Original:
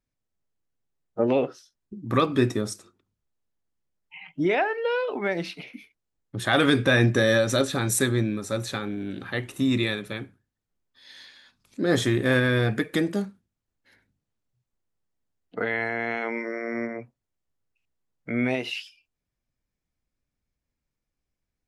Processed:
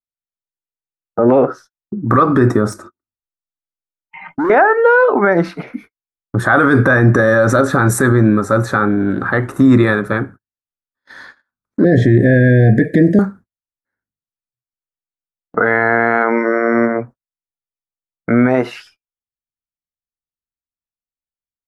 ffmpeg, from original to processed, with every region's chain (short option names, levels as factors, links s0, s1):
-filter_complex "[0:a]asettb=1/sr,asplit=3[s0][s1][s2];[s0]atrim=end=2.724[s3];[s1]atrim=start=2.72:end=4.5,asetpts=PTS-STARTPTS,afade=t=in:d=0.004:c=qsin,afade=t=out:st=1.776:d=0.004:c=qsin,acompressor=threshold=0.0447:ratio=4:attack=3.2:release=140:knee=1:detection=peak,aecho=1:1:3.3:0.5,atrim=end_sample=78498,asoftclip=type=hard:threshold=0.0266[s4];[s2]atrim=start=4.496[s5];[s3][s4]acrossfade=d=0.004:c1=hsin:c2=qsin[s6];[s6][s5]acrossfade=d=0.004:c1=qsin:c2=hsin,asettb=1/sr,asplit=3[s7][s8][s9];[s7]atrim=end=11.844[s10];[s8]atrim=start=11.84:end=13.19,asetpts=PTS-STARTPTS,afade=t=in:d=0.004:c=qsin,afade=t=out:st=1.346:d=0.004:c=qsin,asuperstop=centerf=1100:order=20:qfactor=1.2,acrossover=split=4700[s11][s12];[s12]acompressor=threshold=0.002:ratio=4:attack=1:release=60[s13];[s11][s13]amix=inputs=2:normalize=0,equalizer=f=150:t=o:w=1.6:g=7[s14];[s9]atrim=start=13.186[s15];[s10][s14]acrossfade=d=0.004:c1=hsin:c2=qsin[s16];[s16][s15]acrossfade=d=0.004:c1=qsin:c2=hsin,agate=range=0.0141:threshold=0.00398:ratio=16:detection=peak,highshelf=f=2000:t=q:w=3:g=-12,alimiter=level_in=7.08:limit=0.891:release=50:level=0:latency=1,volume=0.891"